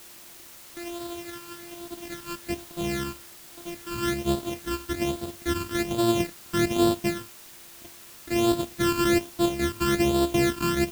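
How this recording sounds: a buzz of ramps at a fixed pitch in blocks of 128 samples; phasing stages 12, 1.2 Hz, lowest notch 630–2100 Hz; a quantiser's noise floor 8-bit, dither triangular

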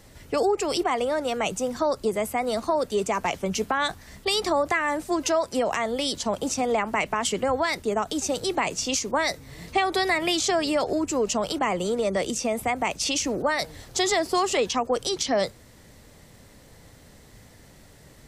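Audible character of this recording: noise floor -51 dBFS; spectral tilt -2.5 dB/oct

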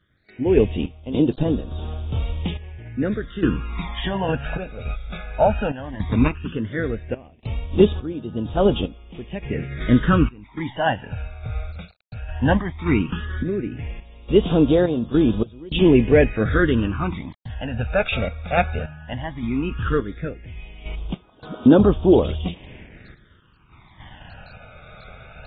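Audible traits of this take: a quantiser's noise floor 8-bit, dither none; random-step tremolo, depth 95%; phasing stages 12, 0.15 Hz, lowest notch 310–2000 Hz; AAC

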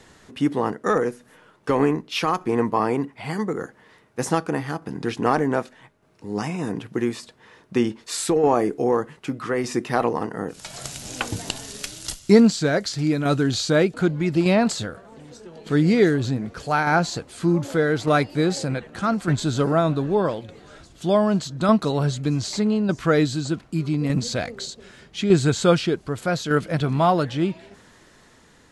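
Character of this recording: tremolo saw down 0.83 Hz, depth 45%

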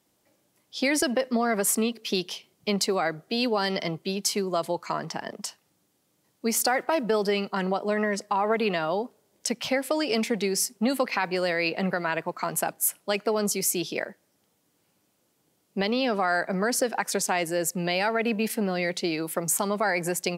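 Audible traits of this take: noise floor -71 dBFS; spectral tilt -3.5 dB/oct

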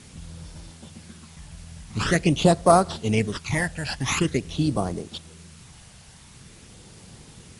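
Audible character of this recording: aliases and images of a low sample rate 9000 Hz, jitter 0%; phasing stages 12, 0.46 Hz, lowest notch 360–2600 Hz; a quantiser's noise floor 8-bit, dither triangular; MP2

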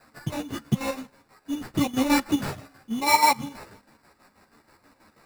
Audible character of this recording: aliases and images of a low sample rate 3200 Hz, jitter 0%; chopped level 6.2 Hz, depth 60%, duty 55%; a shimmering, thickened sound

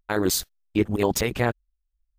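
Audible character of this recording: noise floor -78 dBFS; spectral tilt -4.5 dB/oct

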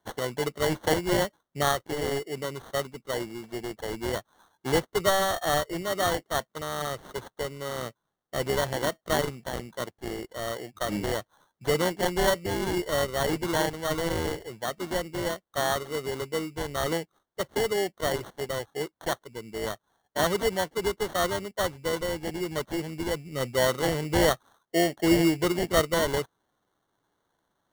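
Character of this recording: aliases and images of a low sample rate 2500 Hz, jitter 0%

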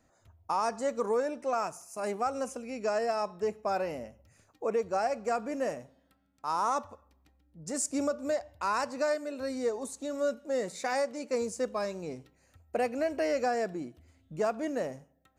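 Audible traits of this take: noise floor -69 dBFS; spectral tilt -3.5 dB/oct

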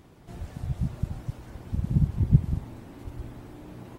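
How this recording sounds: noise floor -52 dBFS; spectral tilt -12.5 dB/oct

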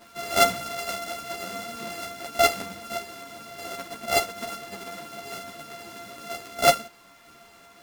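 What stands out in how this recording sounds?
a buzz of ramps at a fixed pitch in blocks of 64 samples; tremolo saw down 0.69 Hz, depth 35%; a quantiser's noise floor 10-bit, dither none; a shimmering, thickened sound

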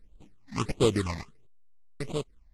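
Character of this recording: aliases and images of a low sample rate 1600 Hz, jitter 20%; random-step tremolo 3.5 Hz; phasing stages 8, 1.5 Hz, lowest notch 390–1800 Hz; AAC

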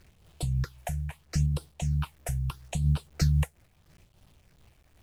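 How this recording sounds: phasing stages 6, 0.77 Hz, lowest notch 290–1900 Hz; a quantiser's noise floor 10-bit, dither none; noise-modulated level

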